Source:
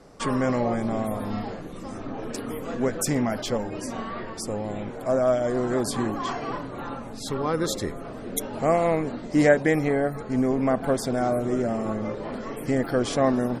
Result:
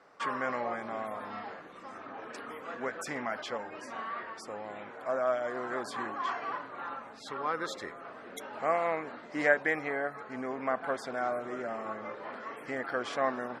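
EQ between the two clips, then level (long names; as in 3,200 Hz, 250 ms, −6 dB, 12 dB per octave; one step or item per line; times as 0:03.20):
resonant band-pass 1,500 Hz, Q 1.2
0.0 dB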